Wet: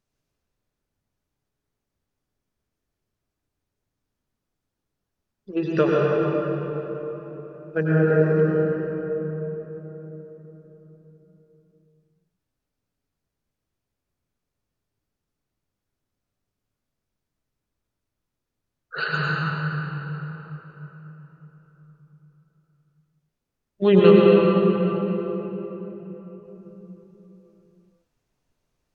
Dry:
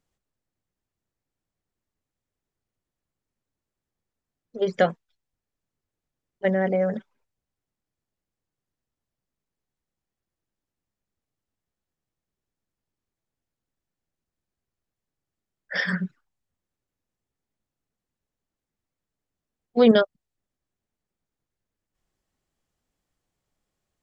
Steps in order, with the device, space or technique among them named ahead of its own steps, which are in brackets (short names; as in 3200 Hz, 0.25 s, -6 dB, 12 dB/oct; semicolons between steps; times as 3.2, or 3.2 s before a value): slowed and reverbed (varispeed -17%; reverb RT60 4.1 s, pre-delay 89 ms, DRR -5 dB); gain -1.5 dB